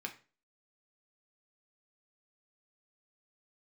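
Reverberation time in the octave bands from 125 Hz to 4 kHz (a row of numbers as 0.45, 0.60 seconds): 0.40, 0.40, 0.40, 0.35, 0.35, 0.30 seconds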